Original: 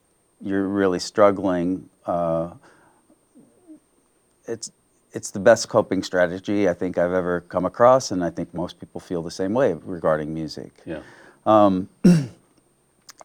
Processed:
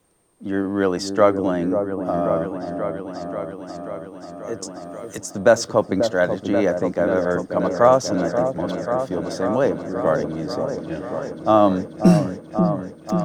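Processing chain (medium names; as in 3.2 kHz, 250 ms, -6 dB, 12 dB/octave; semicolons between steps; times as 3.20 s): delay with an opening low-pass 536 ms, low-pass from 750 Hz, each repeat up 1 oct, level -6 dB; 4.62–5.18 s: three bands compressed up and down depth 100%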